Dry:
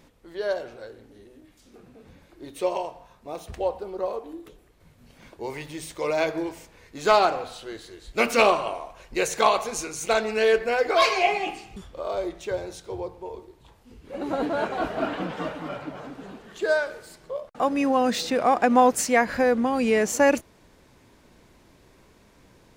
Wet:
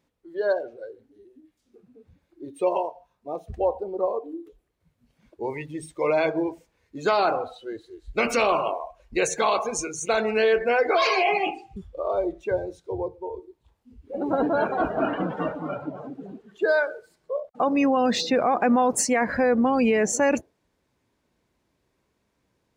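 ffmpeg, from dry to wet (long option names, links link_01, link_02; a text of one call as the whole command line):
ffmpeg -i in.wav -filter_complex "[0:a]asettb=1/sr,asplit=3[link_01][link_02][link_03];[link_01]atrim=end=7.804[link_04];[link_02]atrim=start=7.8:end=8.54,asetpts=PTS-STARTPTS,afade=type=in:duration=0.004:curve=qsin,afade=type=out:start_time=0.736:duration=0.004:curve=qsin,asubboost=boost=8.5:cutoff=93[link_05];[link_03]atrim=start=8.536[link_06];[link_04][link_05]acrossfade=duration=0.004:curve1=hsin:curve2=qsin[link_07];[link_07][link_06]acrossfade=duration=0.004:curve1=qsin:curve2=hsin,afftdn=noise_reduction=20:noise_floor=-35,alimiter=limit=-16.5dB:level=0:latency=1:release=16,highpass=43,volume=3.5dB" out.wav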